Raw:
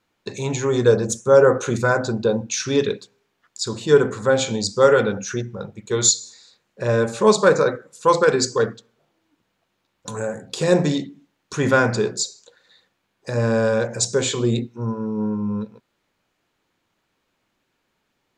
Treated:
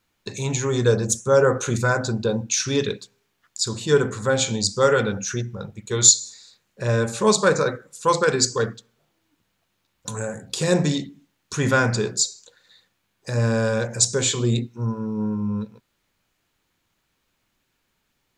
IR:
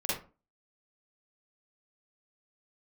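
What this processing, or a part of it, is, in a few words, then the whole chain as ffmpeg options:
smiley-face EQ: -af "lowshelf=f=87:g=8,equalizer=f=480:t=o:w=2.6:g=-4.5,highshelf=f=7700:g=8.5"

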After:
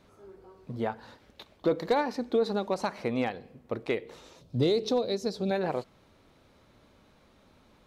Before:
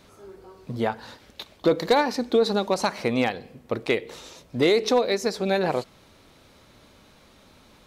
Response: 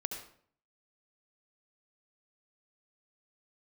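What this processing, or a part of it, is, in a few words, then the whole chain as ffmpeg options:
behind a face mask: -filter_complex "[0:a]asettb=1/sr,asplit=3[s0][s1][s2];[s0]atrim=end=4.414[s3];[s1]atrim=start=4.41:end=5.51,asetpts=PTS-STARTPTS,afade=t=in:d=0.004:c=qsin,afade=t=out:st=1.096:d=0.004:c=qsin,equalizer=f=125:t=o:w=1:g=10,equalizer=f=1000:t=o:w=1:g=-4,equalizer=f=2000:t=o:w=1:g=-10,equalizer=f=4000:t=o:w=1:g=7[s4];[s2]atrim=start=5.506[s5];[s3][s4]acrossfade=d=0.004:c1=hsin:c2=qsin[s6];[s6][s5]acrossfade=d=0.004:c1=qsin:c2=hsin,highshelf=f=2600:g=-8,volume=0.531"

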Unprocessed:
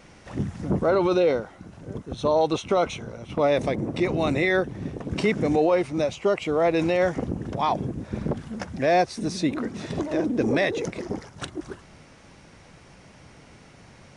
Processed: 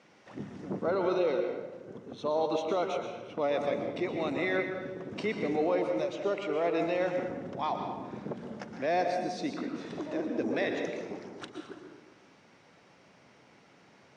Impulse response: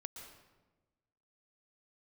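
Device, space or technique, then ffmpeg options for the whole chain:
supermarket ceiling speaker: -filter_complex "[0:a]highpass=210,lowpass=5600[s0];[1:a]atrim=start_sample=2205[s1];[s0][s1]afir=irnorm=-1:irlink=0,volume=0.668"

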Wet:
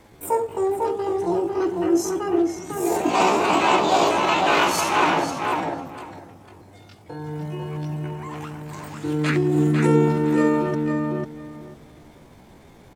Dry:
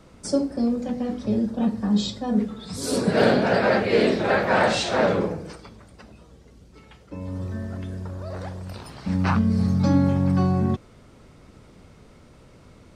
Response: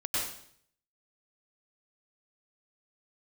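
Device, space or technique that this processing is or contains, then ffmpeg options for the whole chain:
chipmunk voice: -filter_complex "[0:a]asettb=1/sr,asplit=3[s0][s1][s2];[s0]atrim=end=2.384[s3];[s1]atrim=start=2.38:end=3.49,asetpts=PTS-STARTPTS,afade=t=in:d=0.004:c=qsin,afade=t=out:st=1.106:d=0.004:c=qsin,lowpass=6800[s4];[s2]atrim=start=3.486[s5];[s3][s4]acrossfade=d=0.004:c1=hsin:c2=qsin[s6];[s6][s5]acrossfade=d=0.004:c1=qsin:c2=hsin,asetrate=72056,aresample=44100,atempo=0.612027,asplit=2[s7][s8];[s8]adelay=499,lowpass=f=2900:p=1,volume=0.708,asplit=2[s9][s10];[s10]adelay=499,lowpass=f=2900:p=1,volume=0.19,asplit=2[s11][s12];[s12]adelay=499,lowpass=f=2900:p=1,volume=0.19[s13];[s7][s9][s11][s13]amix=inputs=4:normalize=0"

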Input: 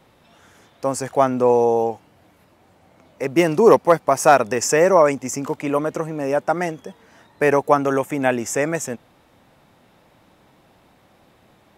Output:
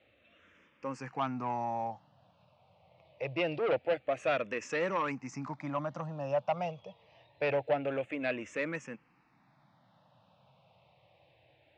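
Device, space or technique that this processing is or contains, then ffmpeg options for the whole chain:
barber-pole phaser into a guitar amplifier: -filter_complex "[0:a]asplit=2[s0][s1];[s1]afreqshift=-0.25[s2];[s0][s2]amix=inputs=2:normalize=1,asoftclip=type=tanh:threshold=0.178,highpass=79,equalizer=f=130:t=q:w=4:g=5,equalizer=f=240:t=q:w=4:g=-5,equalizer=f=390:t=q:w=4:g=-10,equalizer=f=590:t=q:w=4:g=4,equalizer=f=1500:t=q:w=4:g=-3,equalizer=f=2600:t=q:w=4:g=7,lowpass=f=4500:w=0.5412,lowpass=f=4500:w=1.3066,volume=0.376"

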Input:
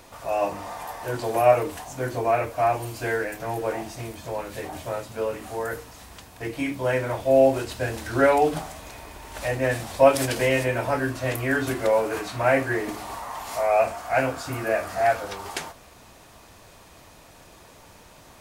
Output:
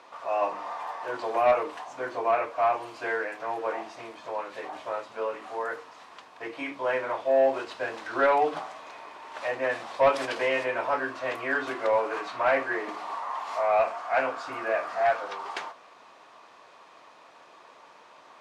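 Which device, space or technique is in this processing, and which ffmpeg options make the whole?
intercom: -af "highpass=410,lowpass=3900,equalizer=f=1100:t=o:w=0.53:g=7,asoftclip=type=tanh:threshold=0.299,volume=0.75"

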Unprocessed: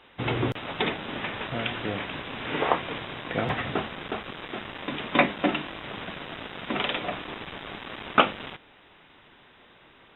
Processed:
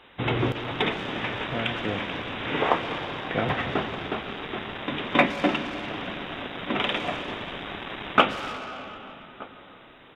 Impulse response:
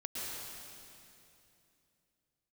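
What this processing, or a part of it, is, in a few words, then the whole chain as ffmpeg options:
saturated reverb return: -filter_complex "[0:a]asplit=2[s0][s1];[s1]adelay=1224,volume=0.0891,highshelf=f=4000:g=-27.6[s2];[s0][s2]amix=inputs=2:normalize=0,asplit=2[s3][s4];[1:a]atrim=start_sample=2205[s5];[s4][s5]afir=irnorm=-1:irlink=0,asoftclip=type=tanh:threshold=0.0562,volume=0.501[s6];[s3][s6]amix=inputs=2:normalize=0"

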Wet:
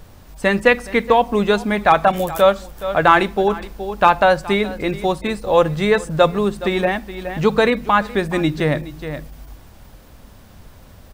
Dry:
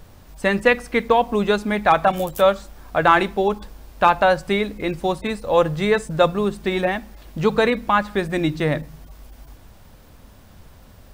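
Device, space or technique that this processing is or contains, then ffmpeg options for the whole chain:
ducked delay: -filter_complex "[0:a]asplit=3[s0][s1][s2];[s1]adelay=420,volume=0.355[s3];[s2]apad=whole_len=509695[s4];[s3][s4]sidechaincompress=threshold=0.0447:ratio=8:attack=16:release=390[s5];[s0][s5]amix=inputs=2:normalize=0,volume=1.33"

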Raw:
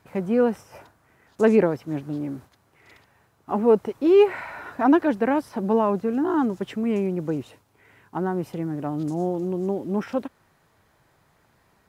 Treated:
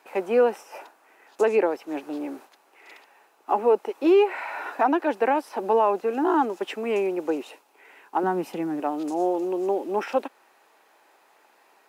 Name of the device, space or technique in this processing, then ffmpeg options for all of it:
laptop speaker: -filter_complex "[0:a]highpass=140,asettb=1/sr,asplit=3[s0][s1][s2];[s0]atrim=end=8.234[s3];[s1]atrim=start=8.23:end=8.8,asetpts=PTS-STARTPTS,afade=t=in:d=0.004:c=qsin,afade=t=out:st=0.566:d=0.004:c=qsin,lowshelf=f=290:t=q:w=1.5:g=9.5[s4];[s2]atrim=start=8.796[s5];[s3][s4]acrossfade=d=0.004:c1=hsin:c2=qsin[s6];[s6][s5]acrossfade=d=0.004:c1=qsin:c2=hsin,highpass=f=330:w=0.5412,highpass=f=330:w=1.3066,equalizer=f=830:t=o:w=0.29:g=6,equalizer=f=2600:t=o:w=0.22:g=7,alimiter=limit=0.178:level=0:latency=1:release=394,volume=1.5"

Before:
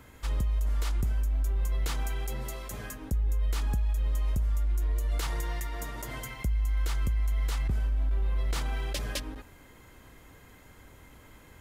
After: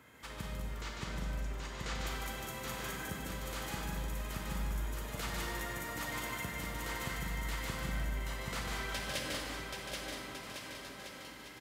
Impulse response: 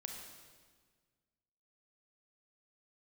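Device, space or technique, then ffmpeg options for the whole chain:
stadium PA: -filter_complex "[0:a]asplit=3[s0][s1][s2];[s0]afade=t=out:st=0.61:d=0.02[s3];[s1]lowpass=f=7300:w=0.5412,lowpass=f=7300:w=1.3066,afade=t=in:st=0.61:d=0.02,afade=t=out:st=1.97:d=0.02[s4];[s2]afade=t=in:st=1.97:d=0.02[s5];[s3][s4][s5]amix=inputs=3:normalize=0,highpass=130,equalizer=f=1900:t=o:w=1.6:g=4,aecho=1:1:148.7|192.4:0.631|0.562[s6];[1:a]atrim=start_sample=2205[s7];[s6][s7]afir=irnorm=-1:irlink=0,aecho=1:1:780|1404|1903|2303|2622:0.631|0.398|0.251|0.158|0.1,volume=0.75"

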